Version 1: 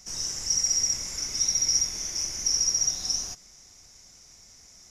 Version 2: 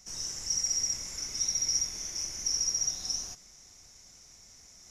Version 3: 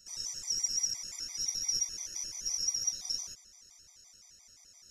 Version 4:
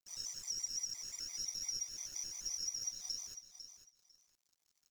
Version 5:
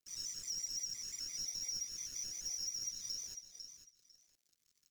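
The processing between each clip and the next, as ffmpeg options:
ffmpeg -i in.wav -af "areverse,acompressor=mode=upward:threshold=-43dB:ratio=2.5,areverse,bandreject=frequency=4900:width=21,volume=-5dB" out.wav
ffmpeg -i in.wav -af "tiltshelf=frequency=1400:gain=-4,aeval=exprs='0.211*(cos(1*acos(clip(val(0)/0.211,-1,1)))-cos(1*PI/2))+0.0168*(cos(2*acos(clip(val(0)/0.211,-1,1)))-cos(2*PI/2))':channel_layout=same,afftfilt=real='re*gt(sin(2*PI*5.8*pts/sr)*(1-2*mod(floor(b*sr/1024/630),2)),0)':imag='im*gt(sin(2*PI*5.8*pts/sr)*(1-2*mod(floor(b*sr/1024/630),2)),0)':win_size=1024:overlap=0.75,volume=-3dB" out.wav
ffmpeg -i in.wav -af "aeval=exprs='sgn(val(0))*max(abs(val(0))-0.00237,0)':channel_layout=same,acompressor=threshold=-35dB:ratio=3,aecho=1:1:500|1000:0.299|0.0537,volume=-3dB" out.wav
ffmpeg -i in.wav -filter_complex "[0:a]acrossover=split=260|1200|5100[link_01][link_02][link_03][link_04];[link_02]acrusher=samples=42:mix=1:aa=0.000001:lfo=1:lforange=25.2:lforate=1.1[link_05];[link_01][link_05][link_03][link_04]amix=inputs=4:normalize=0,asoftclip=type=tanh:threshold=-36dB,volume=2dB" out.wav

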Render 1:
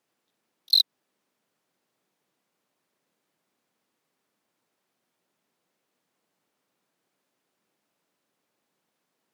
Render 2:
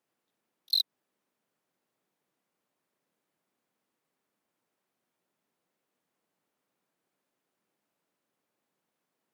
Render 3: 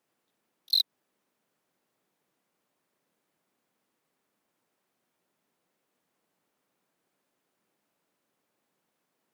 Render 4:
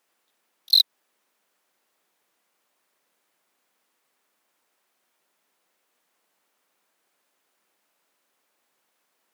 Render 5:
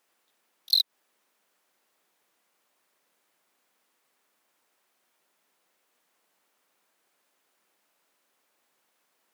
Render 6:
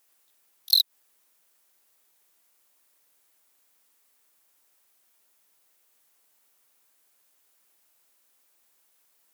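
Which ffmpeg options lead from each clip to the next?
ffmpeg -i in.wav -af "equalizer=frequency=4700:width_type=o:width=1.7:gain=-3.5,volume=-4dB" out.wav
ffmpeg -i in.wav -af "asoftclip=type=tanh:threshold=-19dB,volume=4dB" out.wav
ffmpeg -i in.wav -af "highpass=frequency=880:poles=1,volume=8dB" out.wav
ffmpeg -i in.wav -af "acompressor=threshold=-19dB:ratio=6" out.wav
ffmpeg -i in.wav -af "crystalizer=i=2.5:c=0,volume=-3.5dB" out.wav

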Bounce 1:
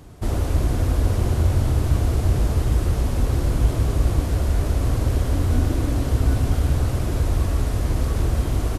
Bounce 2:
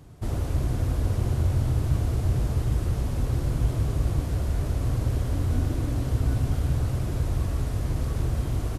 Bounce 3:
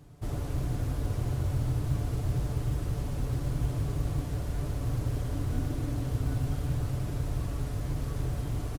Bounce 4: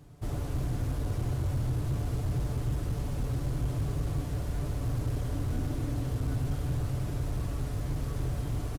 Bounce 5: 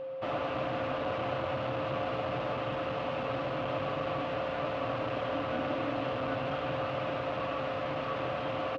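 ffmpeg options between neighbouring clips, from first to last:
ffmpeg -i in.wav -af "equalizer=frequency=130:width=1.7:gain=6.5,volume=-7dB" out.wav
ffmpeg -i in.wav -af "aecho=1:1:6.9:0.37,acrusher=bits=9:mode=log:mix=0:aa=0.000001,volume=-5dB" out.wav
ffmpeg -i in.wav -af "asoftclip=type=hard:threshold=-24.5dB" out.wav
ffmpeg -i in.wav -af "highpass=390,equalizer=frequency=390:width_type=q:width=4:gain=-9,equalizer=frequency=650:width_type=q:width=4:gain=6,equalizer=frequency=1200:width_type=q:width=4:gain=7,equalizer=frequency=2700:width_type=q:width=4:gain=7,lowpass=frequency=3400:width=0.5412,lowpass=frequency=3400:width=1.3066,aeval=exprs='val(0)+0.00562*sin(2*PI*530*n/s)':channel_layout=same,volume=9dB" out.wav

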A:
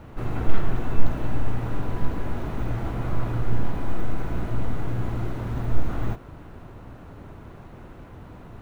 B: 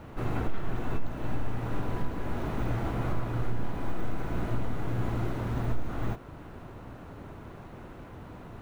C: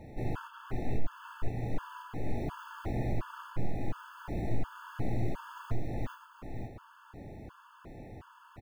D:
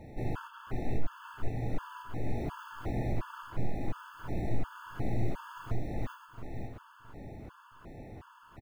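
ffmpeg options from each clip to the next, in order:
ffmpeg -i in.wav -af "lowshelf=frequency=110:gain=-5,alimiter=limit=-18.5dB:level=0:latency=1:release=405" out.wav
ffmpeg -i in.wav -af "aecho=1:1:524:0.473,afftfilt=real='re*gt(sin(2*PI*1.4*pts/sr)*(1-2*mod(floor(b*sr/1024/880),2)),0)':imag='im*gt(sin(2*PI*1.4*pts/sr)*(1-2*mod(floor(b*sr/1024/880),2)),0)':win_size=1024:overlap=0.75,volume=-2.5dB" out.wav
ffmpeg -i in.wav -af "aecho=1:1:668|1336|2004:0.2|0.0579|0.0168" out.wav

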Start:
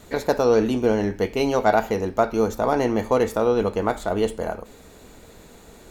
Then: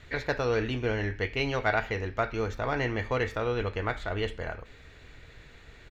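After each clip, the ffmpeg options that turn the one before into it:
ffmpeg -i in.wav -af "firequalizer=gain_entry='entry(140,0);entry(190,-15);entry(290,-10);entry(870,-11);entry(1800,4);entry(9400,-24)':delay=0.05:min_phase=1" out.wav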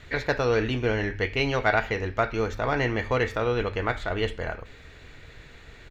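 ffmpeg -i in.wav -af "bandreject=frequency=50:width_type=h:width=6,bandreject=frequency=100:width_type=h:width=6,volume=4dB" out.wav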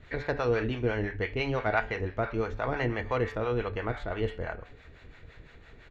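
ffmpeg -i in.wav -filter_complex "[0:a]lowpass=frequency=2200:poles=1,bandreject=frequency=145.1:width_type=h:width=4,bandreject=frequency=290.2:width_type=h:width=4,bandreject=frequency=435.3:width_type=h:width=4,bandreject=frequency=580.4:width_type=h:width=4,bandreject=frequency=725.5:width_type=h:width=4,bandreject=frequency=870.6:width_type=h:width=4,bandreject=frequency=1015.7:width_type=h:width=4,bandreject=frequency=1160.8:width_type=h:width=4,bandreject=frequency=1305.9:width_type=h:width=4,bandreject=frequency=1451:width_type=h:width=4,bandreject=frequency=1596.1:width_type=h:width=4,bandreject=frequency=1741.2:width_type=h:width=4,bandreject=frequency=1886.3:width_type=h:width=4,bandreject=frequency=2031.4:width_type=h:width=4,bandreject=frequency=2176.5:width_type=h:width=4,bandreject=frequency=2321.6:width_type=h:width=4,bandreject=frequency=2466.7:width_type=h:width=4,bandreject=frequency=2611.8:width_type=h:width=4,bandreject=frequency=2756.9:width_type=h:width=4,bandreject=frequency=2902:width_type=h:width=4,bandreject=frequency=3047.1:width_type=h:width=4,bandreject=frequency=3192.2:width_type=h:width=4,bandreject=frequency=3337.3:width_type=h:width=4,bandreject=frequency=3482.4:width_type=h:width=4,bandreject=frequency=3627.5:width_type=h:width=4,bandreject=frequency=3772.6:width_type=h:width=4,bandreject=frequency=3917.7:width_type=h:width=4,bandreject=frequency=4062.8:width_type=h:width=4,bandreject=frequency=4207.9:width_type=h:width=4,bandreject=frequency=4353:width_type=h:width=4,bandreject=frequency=4498.1:width_type=h:width=4,bandreject=frequency=4643.2:width_type=h:width=4,bandreject=frequency=4788.3:width_type=h:width=4,bandreject=frequency=4933.4:width_type=h:width=4,bandreject=frequency=5078.5:width_type=h:width=4,bandreject=frequency=5223.6:width_type=h:width=4,bandreject=frequency=5368.7:width_type=h:width=4,acrossover=split=580[link_01][link_02];[link_01]aeval=exprs='val(0)*(1-0.7/2+0.7/2*cos(2*PI*5.9*n/s))':channel_layout=same[link_03];[link_02]aeval=exprs='val(0)*(1-0.7/2-0.7/2*cos(2*PI*5.9*n/s))':channel_layout=same[link_04];[link_03][link_04]amix=inputs=2:normalize=0" out.wav

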